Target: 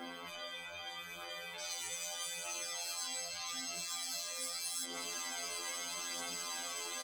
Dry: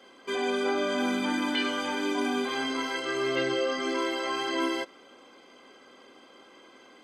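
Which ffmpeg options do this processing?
-filter_complex "[0:a]acompressor=threshold=-36dB:ratio=6,alimiter=level_in=13dB:limit=-24dB:level=0:latency=1:release=144,volume=-13dB,asetnsamples=n=441:p=0,asendcmd='1.59 equalizer g 5.5;3.48 equalizer g 13',equalizer=f=7.7k:w=0.54:g=-11,afftfilt=real='re*lt(hypot(re,im),0.00794)':imag='im*lt(hypot(re,im),0.00794)':win_size=1024:overlap=0.75,aphaser=in_gain=1:out_gain=1:delay=2.2:decay=0.35:speed=0.8:type=triangular,aecho=1:1:361|722|1083:0.2|0.0619|0.0192,acontrast=24,afftfilt=real='hypot(re,im)*cos(PI*b)':imag='0':win_size=2048:overlap=0.75,asoftclip=type=tanh:threshold=-36dB,aemphasis=mode=production:type=50kf,asplit=2[a][b];[b]adelay=6.3,afreqshift=2.3[c];[a][c]amix=inputs=2:normalize=1,volume=12dB"

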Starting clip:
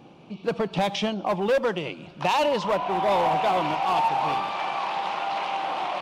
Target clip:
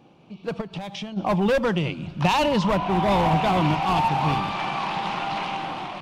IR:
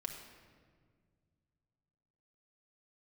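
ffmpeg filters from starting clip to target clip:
-filter_complex "[0:a]dynaudnorm=f=200:g=7:m=7.5dB,asubboost=boost=8:cutoff=200,asplit=3[a][b][c];[a]afade=t=out:st=0.6:d=0.02[d];[b]acompressor=threshold=-26dB:ratio=12,afade=t=in:st=0.6:d=0.02,afade=t=out:st=1.16:d=0.02[e];[c]afade=t=in:st=1.16:d=0.02[f];[d][e][f]amix=inputs=3:normalize=0,volume=-4.5dB"

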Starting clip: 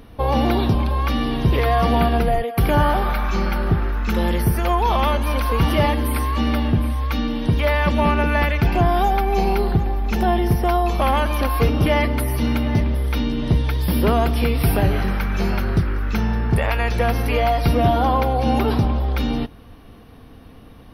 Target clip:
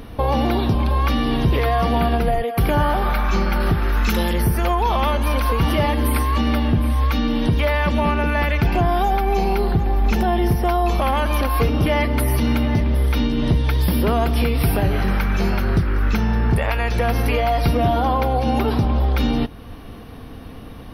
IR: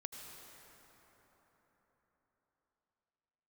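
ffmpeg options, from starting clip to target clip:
-filter_complex "[0:a]asettb=1/sr,asplit=3[a][b][c];[a]atrim=end=3.604[d];[b]atrim=start=3.6:end=4.33,asetpts=PTS-STARTPTS,afade=t=in:d=0.004:c=qsin,afade=t=out:st=0.726:d=0.004:c=qsin,highshelf=f=2.6k:g=9.5[e];[c]atrim=start=4.326[f];[d][e]acrossfade=d=0.004:c1=hsin:c2=qsin[g];[g][f]acrossfade=d=0.004:c1=qsin:c2=hsin,alimiter=limit=-17dB:level=0:latency=1:release=418,volume=7dB"

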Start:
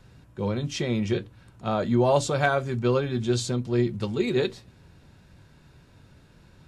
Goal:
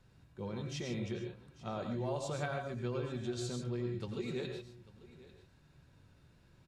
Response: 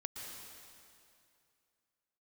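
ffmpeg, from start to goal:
-filter_complex "[0:a]acompressor=threshold=-23dB:ratio=6,aecho=1:1:844:0.112[a];[1:a]atrim=start_sample=2205,afade=t=out:st=0.25:d=0.01,atrim=end_sample=11466,asetrate=57330,aresample=44100[b];[a][b]afir=irnorm=-1:irlink=0,volume=-5.5dB"

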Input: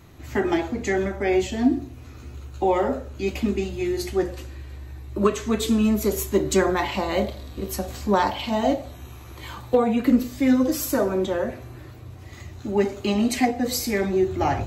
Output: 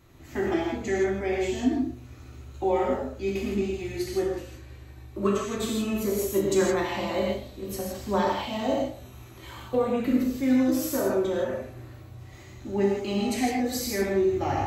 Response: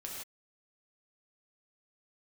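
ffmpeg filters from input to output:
-filter_complex "[1:a]atrim=start_sample=2205[a];[0:a][a]afir=irnorm=-1:irlink=0,volume=-3dB"

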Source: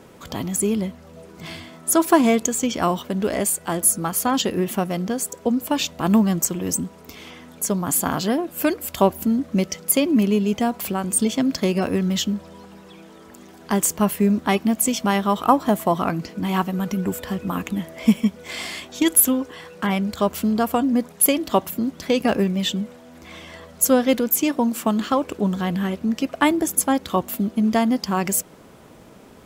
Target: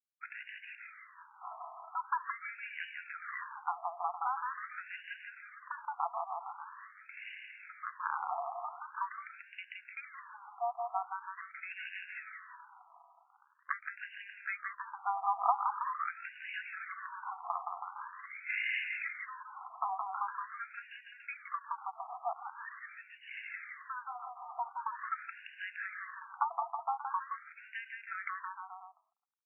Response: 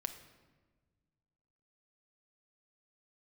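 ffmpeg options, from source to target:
-af "agate=range=-33dB:threshold=-37dB:ratio=3:detection=peak,acompressor=threshold=-32dB:ratio=4,aeval=exprs='sgn(val(0))*max(abs(val(0))-0.00447,0)':c=same,aecho=1:1:170|323|460.7|584.6|696.2:0.631|0.398|0.251|0.158|0.1,afftfilt=real='re*between(b*sr/1024,920*pow(2100/920,0.5+0.5*sin(2*PI*0.44*pts/sr))/1.41,920*pow(2100/920,0.5+0.5*sin(2*PI*0.44*pts/sr))*1.41)':imag='im*between(b*sr/1024,920*pow(2100/920,0.5+0.5*sin(2*PI*0.44*pts/sr))/1.41,920*pow(2100/920,0.5+0.5*sin(2*PI*0.44*pts/sr))*1.41)':win_size=1024:overlap=0.75,volume=5dB"

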